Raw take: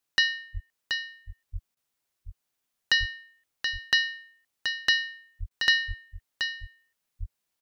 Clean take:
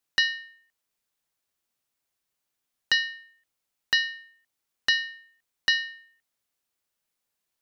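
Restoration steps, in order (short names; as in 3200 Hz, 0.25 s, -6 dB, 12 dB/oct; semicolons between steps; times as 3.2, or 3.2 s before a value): de-plosive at 0.53/1.52/2.99/5.39/5.87/7.19; interpolate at 1.75/5.49, 17 ms; inverse comb 0.728 s -7 dB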